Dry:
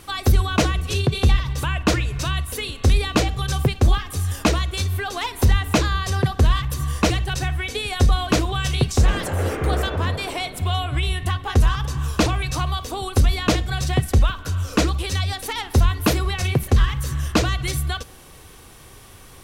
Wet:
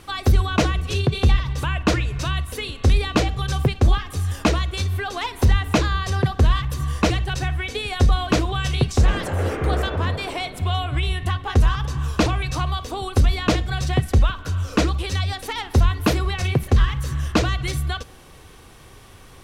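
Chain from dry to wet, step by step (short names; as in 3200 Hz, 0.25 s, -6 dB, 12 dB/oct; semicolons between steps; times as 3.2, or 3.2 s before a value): high shelf 7600 Hz -9.5 dB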